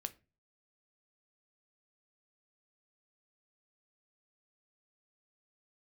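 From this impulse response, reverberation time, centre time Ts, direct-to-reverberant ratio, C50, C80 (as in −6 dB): 0.30 s, 3 ms, 10.0 dB, 19.5 dB, 26.5 dB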